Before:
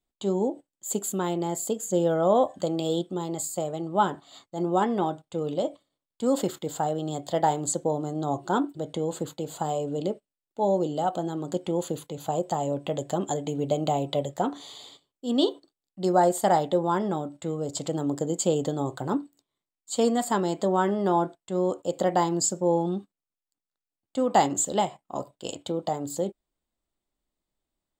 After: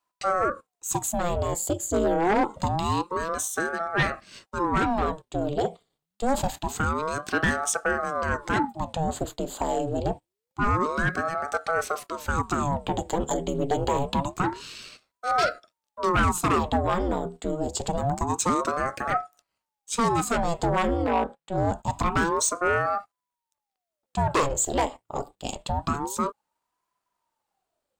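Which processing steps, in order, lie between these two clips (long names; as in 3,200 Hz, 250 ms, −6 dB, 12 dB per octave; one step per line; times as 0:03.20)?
wavefolder on the positive side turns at −16.5 dBFS
0:21.04–0:21.58: bass and treble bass −9 dB, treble −9 dB
soft clipping −19.5 dBFS, distortion −16 dB
ring modulator whose carrier an LFO sweeps 560 Hz, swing 80%, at 0.26 Hz
level +6 dB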